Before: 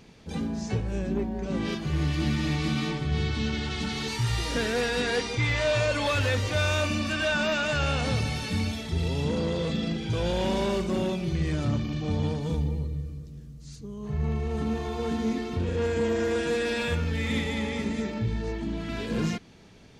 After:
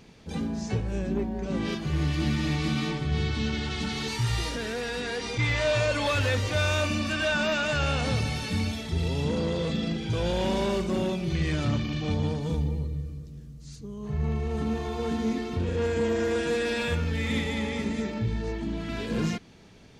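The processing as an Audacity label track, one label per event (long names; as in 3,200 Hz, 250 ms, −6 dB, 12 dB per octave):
4.480000	5.390000	downward compressor, threshold −28 dBFS
11.300000	12.140000	parametric band 2,700 Hz +5.5 dB 2.2 octaves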